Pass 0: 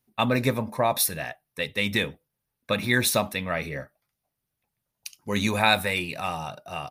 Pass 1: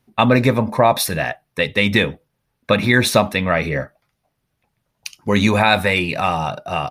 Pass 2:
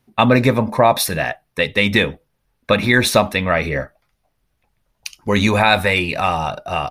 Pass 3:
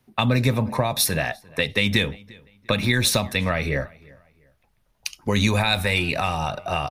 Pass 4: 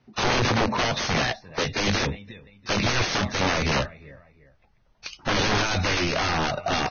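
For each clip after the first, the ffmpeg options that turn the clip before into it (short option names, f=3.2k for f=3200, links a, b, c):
-filter_complex "[0:a]aemphasis=mode=reproduction:type=50kf,asplit=2[a][b];[b]acompressor=threshold=-30dB:ratio=6,volume=-2dB[c];[a][c]amix=inputs=2:normalize=0,alimiter=level_in=9dB:limit=-1dB:release=50:level=0:latency=1,volume=-1dB"
-af "asubboost=boost=5.5:cutoff=54,volume=1dB"
-filter_complex "[0:a]acrossover=split=160|3200[a][b][c];[b]acompressor=threshold=-22dB:ratio=6[d];[a][d][c]amix=inputs=3:normalize=0,asplit=2[e][f];[f]adelay=348,lowpass=f=4k:p=1,volume=-24dB,asplit=2[g][h];[h]adelay=348,lowpass=f=4k:p=1,volume=0.31[i];[e][g][i]amix=inputs=3:normalize=0"
-af "aeval=exprs='(mod(8.41*val(0)+1,2)-1)/8.41':c=same,aemphasis=mode=reproduction:type=50kf,volume=3dB" -ar 16000 -c:a libvorbis -b:a 16k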